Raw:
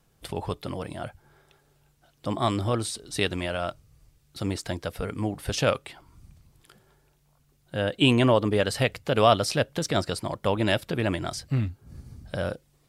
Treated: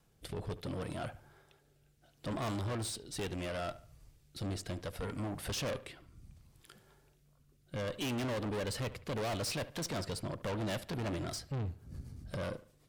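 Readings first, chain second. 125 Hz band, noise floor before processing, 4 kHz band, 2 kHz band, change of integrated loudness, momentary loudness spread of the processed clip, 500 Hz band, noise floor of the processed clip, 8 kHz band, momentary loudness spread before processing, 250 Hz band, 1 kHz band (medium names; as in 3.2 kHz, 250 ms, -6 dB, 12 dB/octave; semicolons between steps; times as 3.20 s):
-10.0 dB, -65 dBFS, -12.0 dB, -12.5 dB, -12.0 dB, 9 LU, -13.0 dB, -69 dBFS, -7.0 dB, 16 LU, -11.5 dB, -14.0 dB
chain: rotary cabinet horn 0.7 Hz, later 8 Hz, at 10.17 s; valve stage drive 34 dB, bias 0.35; feedback echo behind a low-pass 72 ms, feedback 33%, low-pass 3.2 kHz, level -16 dB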